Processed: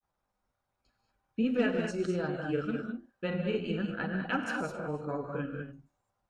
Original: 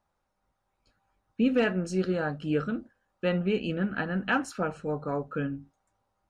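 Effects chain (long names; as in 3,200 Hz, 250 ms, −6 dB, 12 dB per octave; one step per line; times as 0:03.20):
reverb whose tail is shaped and stops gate 240 ms rising, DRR 3 dB
granular cloud 100 ms, grains 20 per second, spray 18 ms, pitch spread up and down by 0 semitones
level −4 dB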